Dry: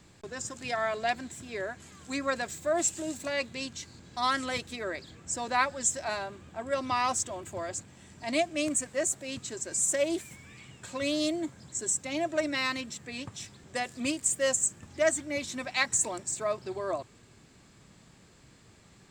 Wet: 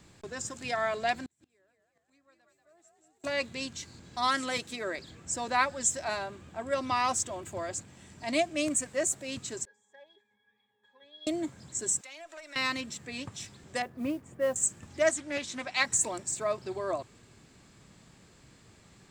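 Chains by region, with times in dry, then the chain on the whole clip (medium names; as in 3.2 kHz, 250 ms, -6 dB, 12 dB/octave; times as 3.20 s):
1.22–3.24 s: frequency-shifting echo 186 ms, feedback 56%, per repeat +53 Hz, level -4.5 dB + inverted gate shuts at -33 dBFS, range -36 dB
4.28–4.99 s: high-pass 130 Hz + peaking EQ 8.2 kHz +2.5 dB 1.7 oct
9.65–11.27 s: band-pass 660–6200 Hz + pitch-class resonator G#, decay 0.19 s
12.01–12.56 s: high-pass 910 Hz + valve stage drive 25 dB, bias 0.25 + compression 4:1, threshold -44 dBFS
13.82–14.56 s: low-pass 1.3 kHz + modulation noise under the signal 28 dB
15.09–15.80 s: low-pass 9.4 kHz + bass shelf 260 Hz -6 dB + loudspeaker Doppler distortion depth 0.18 ms
whole clip: none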